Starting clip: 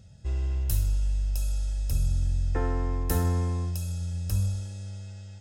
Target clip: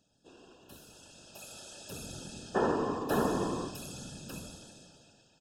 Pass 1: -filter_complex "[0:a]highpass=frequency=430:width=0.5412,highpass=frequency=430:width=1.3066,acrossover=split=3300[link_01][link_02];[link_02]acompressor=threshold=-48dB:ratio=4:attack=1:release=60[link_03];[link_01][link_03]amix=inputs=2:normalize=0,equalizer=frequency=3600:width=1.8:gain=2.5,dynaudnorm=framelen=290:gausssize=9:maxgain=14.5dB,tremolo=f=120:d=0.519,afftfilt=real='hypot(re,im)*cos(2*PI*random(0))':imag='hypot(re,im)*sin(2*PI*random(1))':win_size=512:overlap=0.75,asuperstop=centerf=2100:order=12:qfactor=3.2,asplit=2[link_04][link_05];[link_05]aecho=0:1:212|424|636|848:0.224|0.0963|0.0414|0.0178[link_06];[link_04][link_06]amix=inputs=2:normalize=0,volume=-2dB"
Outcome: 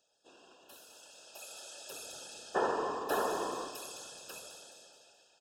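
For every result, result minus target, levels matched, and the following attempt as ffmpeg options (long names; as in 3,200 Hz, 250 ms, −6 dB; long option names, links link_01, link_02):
250 Hz band −7.5 dB; echo-to-direct +11 dB
-filter_complex "[0:a]highpass=frequency=210:width=0.5412,highpass=frequency=210:width=1.3066,acrossover=split=3300[link_01][link_02];[link_02]acompressor=threshold=-48dB:ratio=4:attack=1:release=60[link_03];[link_01][link_03]amix=inputs=2:normalize=0,equalizer=frequency=3600:width=1.8:gain=2.5,dynaudnorm=framelen=290:gausssize=9:maxgain=14.5dB,tremolo=f=120:d=0.519,afftfilt=real='hypot(re,im)*cos(2*PI*random(0))':imag='hypot(re,im)*sin(2*PI*random(1))':win_size=512:overlap=0.75,asuperstop=centerf=2100:order=12:qfactor=3.2,asplit=2[link_04][link_05];[link_05]aecho=0:1:212|424|636|848:0.224|0.0963|0.0414|0.0178[link_06];[link_04][link_06]amix=inputs=2:normalize=0,volume=-2dB"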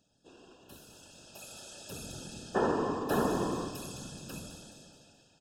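echo-to-direct +11 dB
-filter_complex "[0:a]highpass=frequency=210:width=0.5412,highpass=frequency=210:width=1.3066,acrossover=split=3300[link_01][link_02];[link_02]acompressor=threshold=-48dB:ratio=4:attack=1:release=60[link_03];[link_01][link_03]amix=inputs=2:normalize=0,equalizer=frequency=3600:width=1.8:gain=2.5,dynaudnorm=framelen=290:gausssize=9:maxgain=14.5dB,tremolo=f=120:d=0.519,afftfilt=real='hypot(re,im)*cos(2*PI*random(0))':imag='hypot(re,im)*sin(2*PI*random(1))':win_size=512:overlap=0.75,asuperstop=centerf=2100:order=12:qfactor=3.2,asplit=2[link_04][link_05];[link_05]aecho=0:1:212|424|636:0.0631|0.0271|0.0117[link_06];[link_04][link_06]amix=inputs=2:normalize=0,volume=-2dB"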